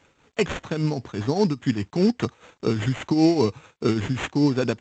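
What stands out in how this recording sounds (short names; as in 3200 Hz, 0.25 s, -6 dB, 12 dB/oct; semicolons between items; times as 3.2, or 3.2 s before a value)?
a quantiser's noise floor 12-bit, dither none; tremolo triangle 5 Hz, depth 70%; aliases and images of a low sample rate 5000 Hz, jitter 0%; G.722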